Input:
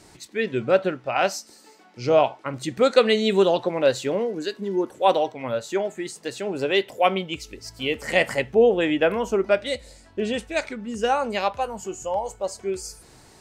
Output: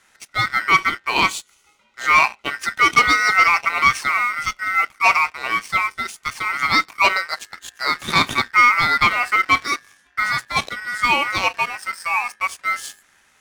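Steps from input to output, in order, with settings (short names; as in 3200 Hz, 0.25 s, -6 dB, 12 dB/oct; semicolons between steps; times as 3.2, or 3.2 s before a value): ring modulator 1700 Hz; sample leveller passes 2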